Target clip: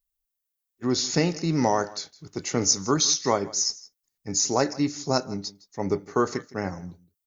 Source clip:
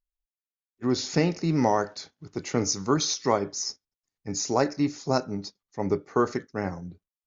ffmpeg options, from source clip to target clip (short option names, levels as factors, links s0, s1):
-filter_complex "[0:a]aemphasis=mode=production:type=50kf,bandreject=f=2400:w=26,asplit=2[s0][s1];[s1]aecho=0:1:162:0.0944[s2];[s0][s2]amix=inputs=2:normalize=0"